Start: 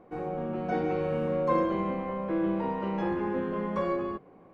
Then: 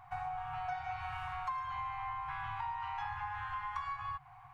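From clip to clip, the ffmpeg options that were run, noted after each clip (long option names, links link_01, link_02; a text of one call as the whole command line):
ffmpeg -i in.wav -af "afftfilt=real='re*(1-between(b*sr/4096,140,710))':imag='im*(1-between(b*sr/4096,140,710))':win_size=4096:overlap=0.75,acompressor=threshold=-43dB:ratio=6,volume=6dB" out.wav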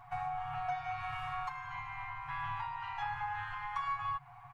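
ffmpeg -i in.wav -af "aecho=1:1:7.1:0.73" out.wav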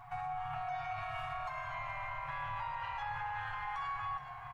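ffmpeg -i in.wav -filter_complex "[0:a]alimiter=level_in=10.5dB:limit=-24dB:level=0:latency=1:release=29,volume=-10.5dB,asplit=2[link_01][link_02];[link_02]asplit=7[link_03][link_04][link_05][link_06][link_07][link_08][link_09];[link_03]adelay=422,afreqshift=-41,volume=-11dB[link_10];[link_04]adelay=844,afreqshift=-82,volume=-15.2dB[link_11];[link_05]adelay=1266,afreqshift=-123,volume=-19.3dB[link_12];[link_06]adelay=1688,afreqshift=-164,volume=-23.5dB[link_13];[link_07]adelay=2110,afreqshift=-205,volume=-27.6dB[link_14];[link_08]adelay=2532,afreqshift=-246,volume=-31.8dB[link_15];[link_09]adelay=2954,afreqshift=-287,volume=-35.9dB[link_16];[link_10][link_11][link_12][link_13][link_14][link_15][link_16]amix=inputs=7:normalize=0[link_17];[link_01][link_17]amix=inputs=2:normalize=0,volume=2dB" out.wav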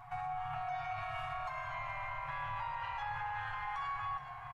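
ffmpeg -i in.wav -af "aresample=32000,aresample=44100" out.wav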